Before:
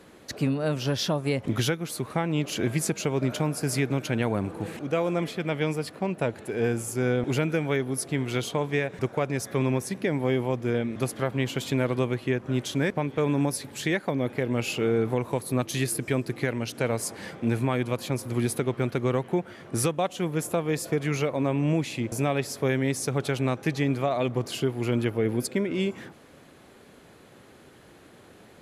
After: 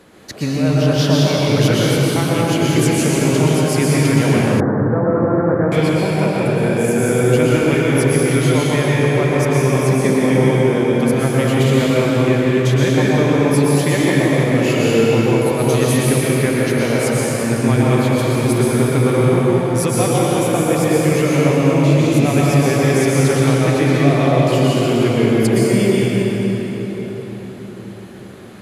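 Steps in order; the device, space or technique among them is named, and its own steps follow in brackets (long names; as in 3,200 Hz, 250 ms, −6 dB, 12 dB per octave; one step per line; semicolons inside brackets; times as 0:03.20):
cathedral (convolution reverb RT60 4.7 s, pre-delay 110 ms, DRR −6.5 dB)
0:04.60–0:05.72: Butterworth low-pass 1,800 Hz 72 dB per octave
level +4 dB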